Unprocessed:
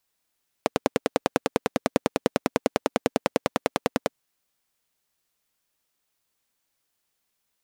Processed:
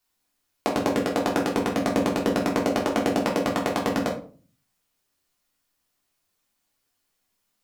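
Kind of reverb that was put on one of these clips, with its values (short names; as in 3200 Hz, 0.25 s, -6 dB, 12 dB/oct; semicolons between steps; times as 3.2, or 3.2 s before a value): shoebox room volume 280 m³, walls furnished, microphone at 3.3 m; gain -3.5 dB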